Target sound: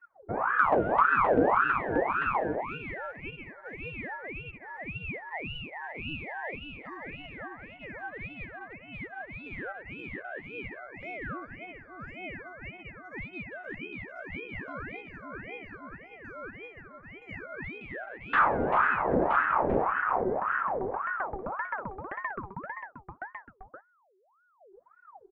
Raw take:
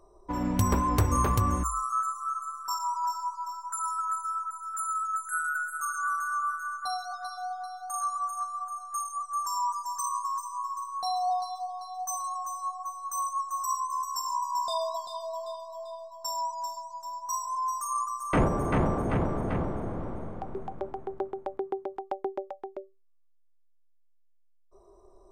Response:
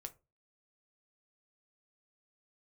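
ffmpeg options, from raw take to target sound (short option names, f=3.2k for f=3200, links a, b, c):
-filter_complex "[0:a]aemphasis=mode=reproduction:type=75fm,afwtdn=0.0126,lowpass=1.5k,equalizer=f=830:t=o:w=1.7:g=-13,asplit=2[a][b];[b]volume=22dB,asoftclip=hard,volume=-22dB,volume=-5.5dB[c];[a][c]amix=inputs=2:normalize=0,aecho=1:1:972:0.562,asplit=2[d][e];[1:a]atrim=start_sample=2205[f];[e][f]afir=irnorm=-1:irlink=0,volume=-9dB[g];[d][g]amix=inputs=2:normalize=0,aeval=exprs='val(0)*sin(2*PI*920*n/s+920*0.6/1.8*sin(2*PI*1.8*n/s))':c=same"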